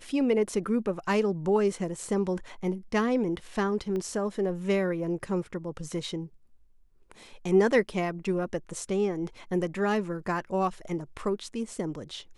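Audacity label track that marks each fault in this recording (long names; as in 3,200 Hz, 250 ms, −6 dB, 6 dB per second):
3.960000	3.960000	click −23 dBFS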